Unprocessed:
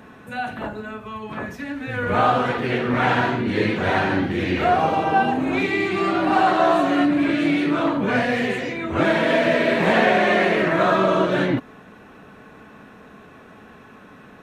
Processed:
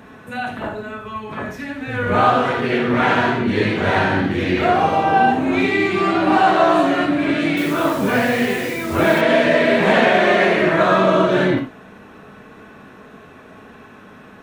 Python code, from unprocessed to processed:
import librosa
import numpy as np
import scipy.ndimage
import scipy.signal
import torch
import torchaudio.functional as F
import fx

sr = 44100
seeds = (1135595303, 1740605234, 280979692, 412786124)

y = fx.rev_gated(x, sr, seeds[0], gate_ms=110, shape='flat', drr_db=4.5)
y = fx.quant_dither(y, sr, seeds[1], bits=6, dither='none', at=(7.57, 9.21))
y = y * librosa.db_to_amplitude(2.0)